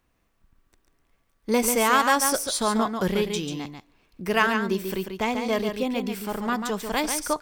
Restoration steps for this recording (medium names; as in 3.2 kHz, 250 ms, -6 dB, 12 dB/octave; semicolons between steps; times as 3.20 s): inverse comb 141 ms -6.5 dB